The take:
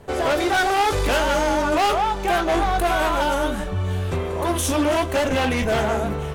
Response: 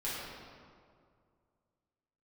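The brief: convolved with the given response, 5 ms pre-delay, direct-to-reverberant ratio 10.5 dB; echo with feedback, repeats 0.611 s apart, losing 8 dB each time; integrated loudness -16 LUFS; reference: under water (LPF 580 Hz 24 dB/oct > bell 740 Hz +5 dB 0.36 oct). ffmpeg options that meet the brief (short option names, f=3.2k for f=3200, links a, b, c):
-filter_complex "[0:a]aecho=1:1:611|1222|1833|2444|3055:0.398|0.159|0.0637|0.0255|0.0102,asplit=2[a][b];[1:a]atrim=start_sample=2205,adelay=5[c];[b][c]afir=irnorm=-1:irlink=0,volume=-15dB[d];[a][d]amix=inputs=2:normalize=0,lowpass=f=580:w=0.5412,lowpass=f=580:w=1.3066,equalizer=f=740:t=o:w=0.36:g=5,volume=7.5dB"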